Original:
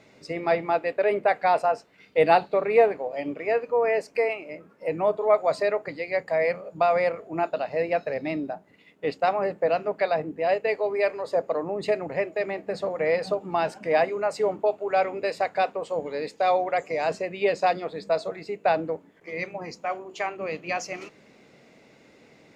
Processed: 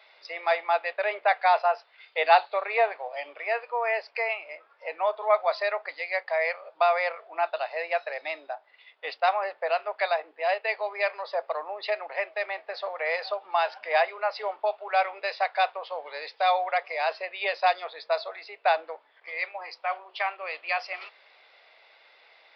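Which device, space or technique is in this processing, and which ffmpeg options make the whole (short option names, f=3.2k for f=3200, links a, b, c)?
musical greeting card: -af "aresample=11025,aresample=44100,highpass=f=710:w=0.5412,highpass=f=710:w=1.3066,equalizer=f=3.5k:t=o:w=0.21:g=5.5,volume=2.5dB"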